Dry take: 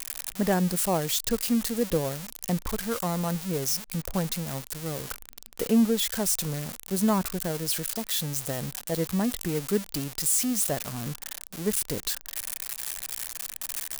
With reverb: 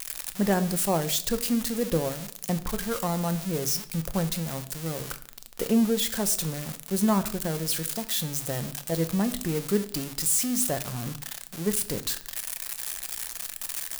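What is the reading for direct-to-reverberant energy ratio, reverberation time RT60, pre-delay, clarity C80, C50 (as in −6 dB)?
10.0 dB, 0.60 s, 6 ms, 19.0 dB, 15.5 dB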